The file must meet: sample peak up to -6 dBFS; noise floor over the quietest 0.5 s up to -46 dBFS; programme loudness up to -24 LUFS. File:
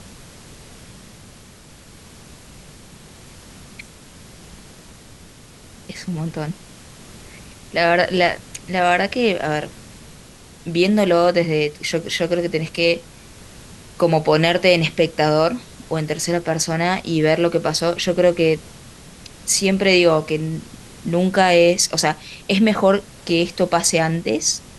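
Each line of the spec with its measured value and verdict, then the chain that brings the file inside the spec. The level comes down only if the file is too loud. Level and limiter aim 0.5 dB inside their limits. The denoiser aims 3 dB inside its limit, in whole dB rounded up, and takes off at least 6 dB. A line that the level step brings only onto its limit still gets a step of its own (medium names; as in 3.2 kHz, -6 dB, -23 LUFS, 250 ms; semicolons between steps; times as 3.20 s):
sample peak -2.5 dBFS: fail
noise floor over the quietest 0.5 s -44 dBFS: fail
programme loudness -18.5 LUFS: fail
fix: trim -6 dB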